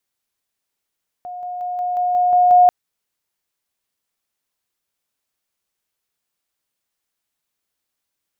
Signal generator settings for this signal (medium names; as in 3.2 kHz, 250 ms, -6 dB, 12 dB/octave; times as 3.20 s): level ladder 719 Hz -28 dBFS, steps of 3 dB, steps 8, 0.18 s 0.00 s